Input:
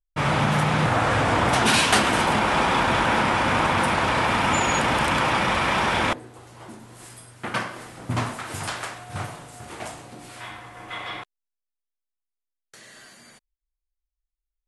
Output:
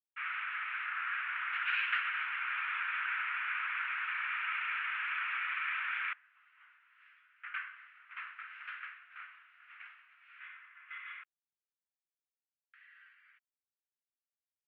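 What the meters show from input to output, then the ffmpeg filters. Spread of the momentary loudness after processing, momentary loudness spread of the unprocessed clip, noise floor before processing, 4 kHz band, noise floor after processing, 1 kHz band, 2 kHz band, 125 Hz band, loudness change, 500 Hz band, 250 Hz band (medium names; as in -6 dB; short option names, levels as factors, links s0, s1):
18 LU, 18 LU, -85 dBFS, -19.5 dB, under -85 dBFS, -19.0 dB, -9.0 dB, under -40 dB, -14.0 dB, under -40 dB, under -40 dB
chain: -af "asuperpass=centerf=1900:order=8:qfactor=1.3,volume=0.355"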